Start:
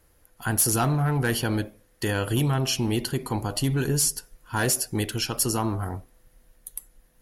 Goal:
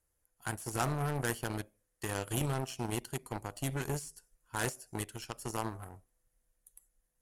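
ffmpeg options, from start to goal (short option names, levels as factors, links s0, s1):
-filter_complex "[0:a]acrossover=split=3600[s0][s1];[s1]acompressor=threshold=0.02:ratio=4:attack=1:release=60[s2];[s0][s2]amix=inputs=2:normalize=0,aeval=exprs='0.188*(cos(1*acos(clip(val(0)/0.188,-1,1)))-cos(1*PI/2))+0.0531*(cos(3*acos(clip(val(0)/0.188,-1,1)))-cos(3*PI/2))':c=same,equalizer=f=250:t=o:w=1:g=-4,equalizer=f=4000:t=o:w=1:g=-4,equalizer=f=8000:t=o:w=1:g=10,volume=0.631"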